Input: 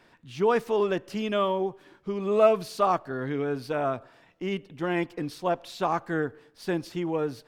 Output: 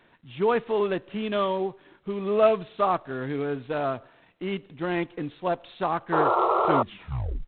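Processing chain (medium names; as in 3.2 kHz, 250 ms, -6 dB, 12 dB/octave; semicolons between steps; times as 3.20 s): tape stop on the ending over 0.87 s; painted sound noise, 6.12–6.83 s, 340–1400 Hz -22 dBFS; G.726 24 kbps 8 kHz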